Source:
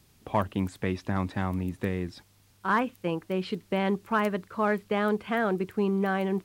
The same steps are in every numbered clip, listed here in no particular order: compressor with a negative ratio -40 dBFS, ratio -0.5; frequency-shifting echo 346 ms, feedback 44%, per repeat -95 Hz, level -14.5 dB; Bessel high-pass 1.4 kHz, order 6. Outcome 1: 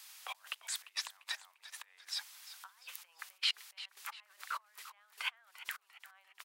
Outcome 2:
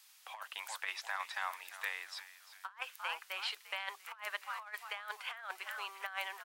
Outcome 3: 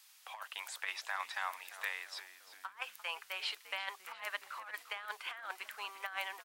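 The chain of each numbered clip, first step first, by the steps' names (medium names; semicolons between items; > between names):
compressor with a negative ratio > frequency-shifting echo > Bessel high-pass; frequency-shifting echo > Bessel high-pass > compressor with a negative ratio; Bessel high-pass > compressor with a negative ratio > frequency-shifting echo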